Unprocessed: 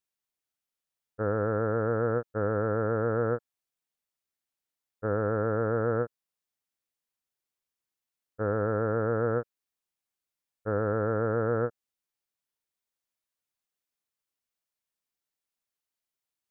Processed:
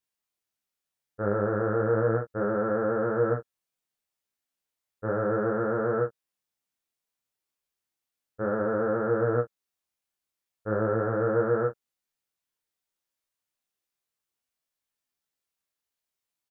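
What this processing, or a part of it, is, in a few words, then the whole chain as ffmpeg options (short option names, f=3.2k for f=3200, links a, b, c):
double-tracked vocal: -filter_complex "[0:a]asplit=2[a][b];[b]adelay=15,volume=-7dB[c];[a][c]amix=inputs=2:normalize=0,flanger=delay=22.5:depth=7:speed=0.34,volume=4dB"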